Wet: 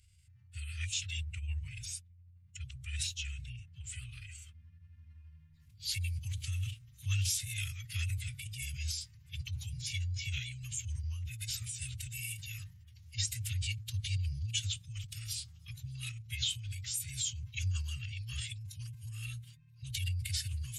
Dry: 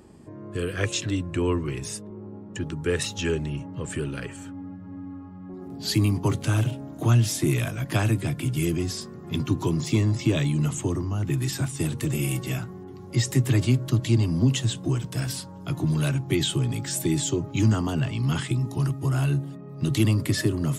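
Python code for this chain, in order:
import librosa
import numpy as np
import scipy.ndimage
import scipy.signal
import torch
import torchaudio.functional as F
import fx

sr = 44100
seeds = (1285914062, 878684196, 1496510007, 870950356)

y = fx.transient(x, sr, attack_db=-2, sustain_db=4)
y = scipy.signal.sosfilt(scipy.signal.cheby1(3, 1.0, [100.0, 2500.0], 'bandstop', fs=sr, output='sos'), y)
y = fx.pitch_keep_formants(y, sr, semitones=-3.0)
y = y * librosa.db_to_amplitude(-5.0)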